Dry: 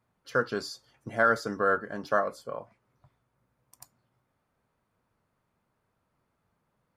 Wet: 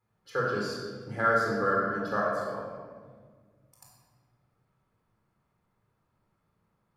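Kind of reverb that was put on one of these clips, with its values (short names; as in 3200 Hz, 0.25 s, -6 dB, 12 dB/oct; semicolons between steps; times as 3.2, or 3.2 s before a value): shoebox room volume 1800 m³, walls mixed, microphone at 4.1 m; gain -7.5 dB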